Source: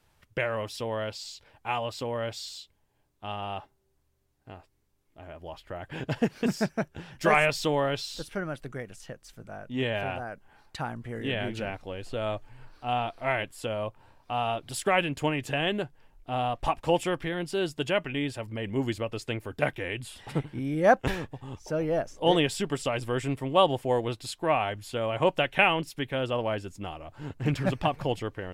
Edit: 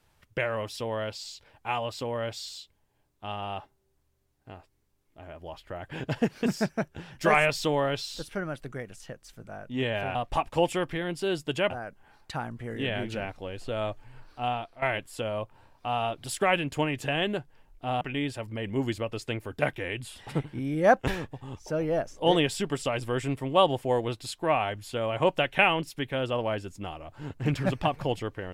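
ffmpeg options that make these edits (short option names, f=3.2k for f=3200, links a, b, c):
-filter_complex "[0:a]asplit=5[a][b][c][d][e];[a]atrim=end=10.152[f];[b]atrim=start=16.458:end=18.012[g];[c]atrim=start=10.148:end=13.27,asetpts=PTS-STARTPTS,afade=t=out:st=2.732:d=0.39:silence=0.211349[h];[d]atrim=start=13.27:end=16.462,asetpts=PTS-STARTPTS,afade=t=in:d=0.004:c=hsin:silence=0.211349[i];[e]atrim=start=18.008[j];[f][g]acrossfade=d=0.004:c1=hsin:c2=hsin[k];[h][i]concat=n=2:v=0:a=1[l];[k][l]acrossfade=d=0.004:c1=hsin:c2=hsin[m];[m][j]acrossfade=d=0.004:c1=hsin:c2=hsin"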